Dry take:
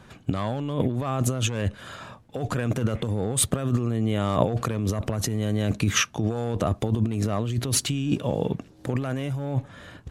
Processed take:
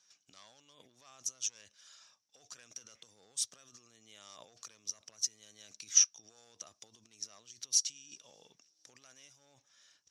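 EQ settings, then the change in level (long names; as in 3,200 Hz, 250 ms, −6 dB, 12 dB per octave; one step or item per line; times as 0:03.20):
resonant band-pass 5,700 Hz, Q 11
+6.5 dB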